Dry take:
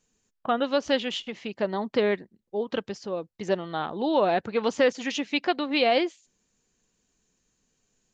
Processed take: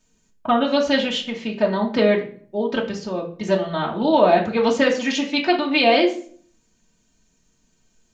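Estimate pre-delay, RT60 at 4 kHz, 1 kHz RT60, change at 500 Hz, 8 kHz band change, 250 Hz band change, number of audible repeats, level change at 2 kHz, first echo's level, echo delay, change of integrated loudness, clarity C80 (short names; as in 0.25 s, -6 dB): 3 ms, 0.35 s, 0.45 s, +6.0 dB, n/a, +8.0 dB, none, +7.0 dB, none, none, +7.0 dB, 14.5 dB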